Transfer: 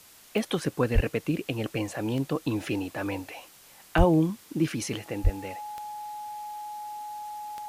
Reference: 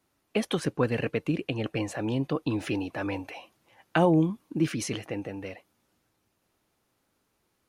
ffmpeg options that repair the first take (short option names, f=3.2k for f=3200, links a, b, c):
-filter_complex "[0:a]adeclick=t=4,bandreject=f=840:w=30,asplit=3[a][b][c];[a]afade=t=out:st=0.94:d=0.02[d];[b]highpass=f=140:w=0.5412,highpass=f=140:w=1.3066,afade=t=in:st=0.94:d=0.02,afade=t=out:st=1.06:d=0.02[e];[c]afade=t=in:st=1.06:d=0.02[f];[d][e][f]amix=inputs=3:normalize=0,asplit=3[g][h][i];[g]afade=t=out:st=3.97:d=0.02[j];[h]highpass=f=140:w=0.5412,highpass=f=140:w=1.3066,afade=t=in:st=3.97:d=0.02,afade=t=out:st=4.09:d=0.02[k];[i]afade=t=in:st=4.09:d=0.02[l];[j][k][l]amix=inputs=3:normalize=0,asplit=3[m][n][o];[m]afade=t=out:st=5.23:d=0.02[p];[n]highpass=f=140:w=0.5412,highpass=f=140:w=1.3066,afade=t=in:st=5.23:d=0.02,afade=t=out:st=5.35:d=0.02[q];[o]afade=t=in:st=5.35:d=0.02[r];[p][q][r]amix=inputs=3:normalize=0,afwtdn=0.0025"